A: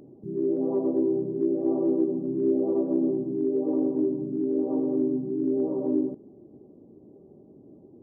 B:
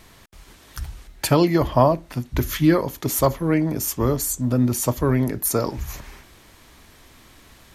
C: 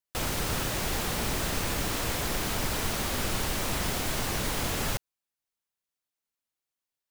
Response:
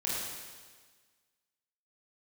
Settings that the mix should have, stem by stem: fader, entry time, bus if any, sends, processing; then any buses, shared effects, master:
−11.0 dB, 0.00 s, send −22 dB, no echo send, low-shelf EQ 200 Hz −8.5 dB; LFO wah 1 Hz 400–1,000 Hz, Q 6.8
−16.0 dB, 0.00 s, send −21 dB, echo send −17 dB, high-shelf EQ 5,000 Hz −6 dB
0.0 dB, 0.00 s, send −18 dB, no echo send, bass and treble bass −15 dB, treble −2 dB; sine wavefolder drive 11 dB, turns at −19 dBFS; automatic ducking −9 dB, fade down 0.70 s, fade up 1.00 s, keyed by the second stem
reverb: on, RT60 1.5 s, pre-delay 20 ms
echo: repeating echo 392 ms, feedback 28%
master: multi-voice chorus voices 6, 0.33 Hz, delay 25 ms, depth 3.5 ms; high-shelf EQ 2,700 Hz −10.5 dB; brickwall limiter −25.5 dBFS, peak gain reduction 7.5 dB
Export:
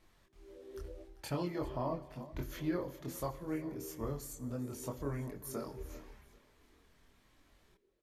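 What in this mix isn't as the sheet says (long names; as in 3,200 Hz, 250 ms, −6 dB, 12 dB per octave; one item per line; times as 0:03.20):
stem A: send off
stem C: muted
master: missing high-shelf EQ 2,700 Hz −10.5 dB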